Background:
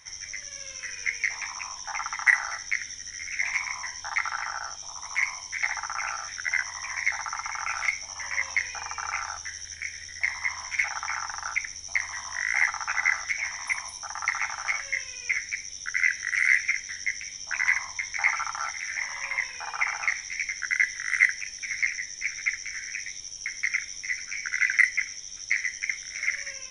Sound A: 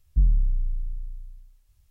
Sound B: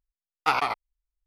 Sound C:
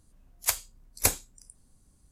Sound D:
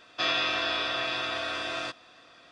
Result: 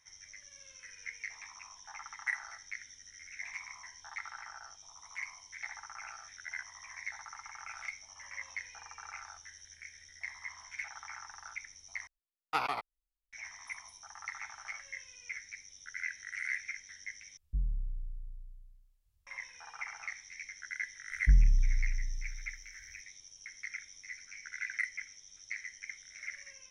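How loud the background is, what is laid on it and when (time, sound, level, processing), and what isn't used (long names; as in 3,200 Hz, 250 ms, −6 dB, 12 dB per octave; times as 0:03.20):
background −15 dB
0:12.07: overwrite with B −9 dB
0:17.37: overwrite with A −13.5 dB
0:21.11: mix in A −3 dB
not used: C, D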